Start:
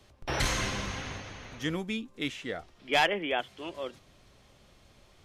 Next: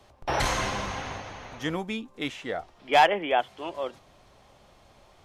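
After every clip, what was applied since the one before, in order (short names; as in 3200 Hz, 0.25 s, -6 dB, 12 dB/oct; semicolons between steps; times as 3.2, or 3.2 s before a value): bell 810 Hz +9.5 dB 1.3 oct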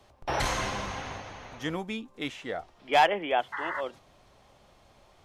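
painted sound noise, 3.52–3.81, 820–2100 Hz -32 dBFS; gain -2.5 dB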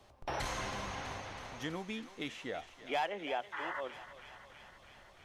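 compressor 2:1, threshold -37 dBFS, peak gain reduction 11.5 dB; thinning echo 0.325 s, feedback 78%, high-pass 730 Hz, level -12 dB; gain -2.5 dB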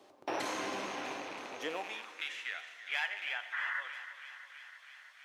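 rattling part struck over -50 dBFS, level -35 dBFS; high-pass sweep 310 Hz -> 1700 Hz, 1.46–2.25; plate-style reverb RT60 1.9 s, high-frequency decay 0.8×, DRR 9 dB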